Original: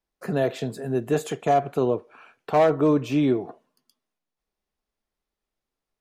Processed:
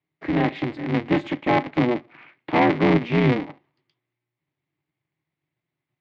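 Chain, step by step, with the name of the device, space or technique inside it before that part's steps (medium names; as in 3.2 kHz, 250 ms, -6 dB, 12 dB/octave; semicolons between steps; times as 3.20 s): ring modulator pedal into a guitar cabinet (polarity switched at an audio rate 120 Hz; cabinet simulation 110–3800 Hz, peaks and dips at 150 Hz +9 dB, 300 Hz +9 dB, 530 Hz -6 dB, 1.4 kHz -4 dB, 2.1 kHz +10 dB)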